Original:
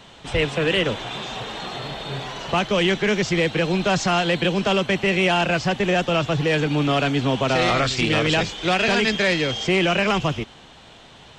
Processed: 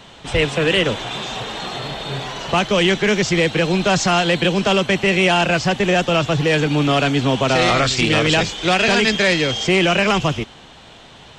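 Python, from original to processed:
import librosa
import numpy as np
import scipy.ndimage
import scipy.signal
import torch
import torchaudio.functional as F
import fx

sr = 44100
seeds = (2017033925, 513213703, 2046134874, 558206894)

y = fx.dynamic_eq(x, sr, hz=8500.0, q=0.71, threshold_db=-42.0, ratio=4.0, max_db=4)
y = F.gain(torch.from_numpy(y), 3.5).numpy()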